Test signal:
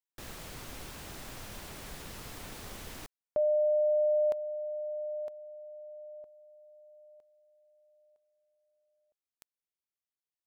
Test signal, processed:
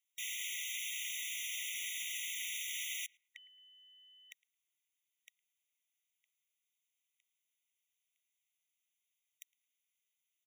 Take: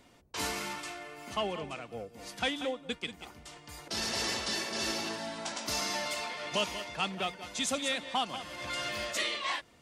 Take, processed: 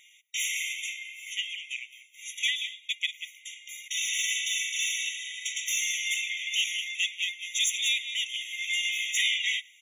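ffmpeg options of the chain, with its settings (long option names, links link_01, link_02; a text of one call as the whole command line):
ffmpeg -i in.wav -filter_complex "[0:a]asplit=2[link_01][link_02];[link_02]adelay=110,lowpass=frequency=1400:poles=1,volume=-21dB,asplit=2[link_03][link_04];[link_04]adelay=110,lowpass=frequency=1400:poles=1,volume=0.35,asplit=2[link_05][link_06];[link_06]adelay=110,lowpass=frequency=1400:poles=1,volume=0.35[link_07];[link_01][link_03][link_05][link_07]amix=inputs=4:normalize=0,aeval=exprs='0.126*sin(PI/2*2.24*val(0)/0.126)':channel_layout=same,afftfilt=real='re*eq(mod(floor(b*sr/1024/1900),2),1)':imag='im*eq(mod(floor(b*sr/1024/1900),2),1)':win_size=1024:overlap=0.75" out.wav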